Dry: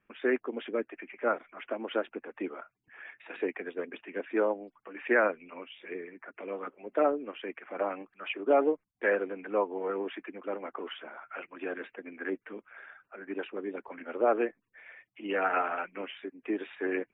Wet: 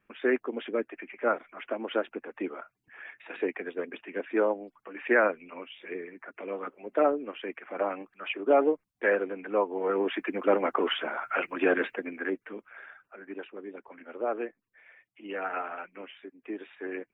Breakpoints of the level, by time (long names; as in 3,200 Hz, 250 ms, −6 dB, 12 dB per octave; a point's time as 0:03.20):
0:09.69 +2 dB
0:10.40 +12 dB
0:11.86 +12 dB
0:12.34 +2 dB
0:12.85 +2 dB
0:13.49 −5 dB